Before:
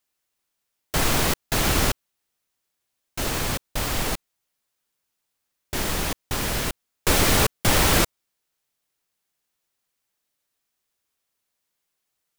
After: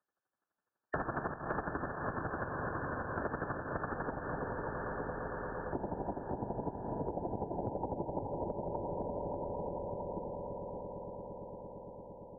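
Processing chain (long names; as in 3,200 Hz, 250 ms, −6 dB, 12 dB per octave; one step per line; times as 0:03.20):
feedback delay that plays each chunk backwards 284 ms, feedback 68%, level −7.5 dB
brickwall limiter −12 dBFS, peak gain reduction 7 dB
square-wave tremolo 12 Hz, depth 65%, duty 25%
noise gate −53 dBFS, range −24 dB
linear-phase brick-wall low-pass 1,800 Hz, from 0:04.09 1,000 Hz
echo that builds up and dies away 114 ms, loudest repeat 5, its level −16 dB
downward compressor 4 to 1, threshold −38 dBFS, peak gain reduction 14 dB
high-pass filter 190 Hz 6 dB per octave
multiband upward and downward compressor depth 70%
level +6.5 dB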